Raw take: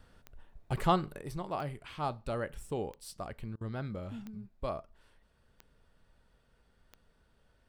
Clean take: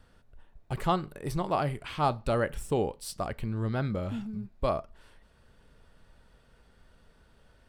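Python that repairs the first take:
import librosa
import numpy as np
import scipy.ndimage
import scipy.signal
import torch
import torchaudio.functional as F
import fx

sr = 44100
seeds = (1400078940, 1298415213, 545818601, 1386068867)

y = fx.fix_declick_ar(x, sr, threshold=10.0)
y = fx.fix_interpolate(y, sr, at_s=(3.56,), length_ms=48.0)
y = fx.gain(y, sr, db=fx.steps((0.0, 0.0), (1.22, 8.0)))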